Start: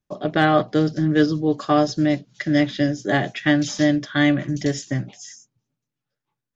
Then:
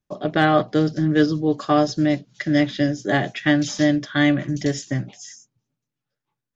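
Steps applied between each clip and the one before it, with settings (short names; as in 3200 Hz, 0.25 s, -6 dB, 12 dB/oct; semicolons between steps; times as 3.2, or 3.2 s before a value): nothing audible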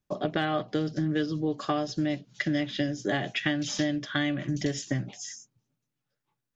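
dynamic EQ 2900 Hz, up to +6 dB, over -44 dBFS, Q 2.3; compressor, threshold -25 dBFS, peak gain reduction 13 dB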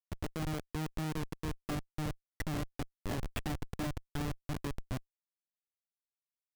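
Schmitt trigger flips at -24 dBFS; gain -4 dB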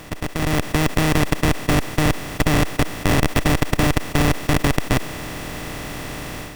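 per-bin compression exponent 0.2; AGC gain up to 9 dB; gain +4.5 dB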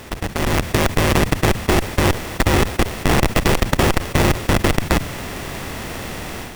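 cycle switcher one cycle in 3, inverted; gain +1.5 dB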